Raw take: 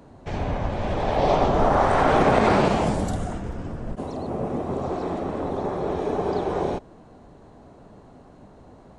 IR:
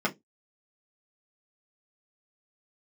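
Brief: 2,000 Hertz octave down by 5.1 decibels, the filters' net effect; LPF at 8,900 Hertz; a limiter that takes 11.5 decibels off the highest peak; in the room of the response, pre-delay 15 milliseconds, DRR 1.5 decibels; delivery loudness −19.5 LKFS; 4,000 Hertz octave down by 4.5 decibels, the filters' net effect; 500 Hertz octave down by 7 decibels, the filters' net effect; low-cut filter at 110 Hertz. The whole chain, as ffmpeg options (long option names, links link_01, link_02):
-filter_complex "[0:a]highpass=110,lowpass=8900,equalizer=frequency=500:width_type=o:gain=-9,equalizer=frequency=2000:width_type=o:gain=-5.5,equalizer=frequency=4000:width_type=o:gain=-3.5,alimiter=limit=-22dB:level=0:latency=1,asplit=2[link_01][link_02];[1:a]atrim=start_sample=2205,adelay=15[link_03];[link_02][link_03]afir=irnorm=-1:irlink=0,volume=-12dB[link_04];[link_01][link_04]amix=inputs=2:normalize=0,volume=9dB"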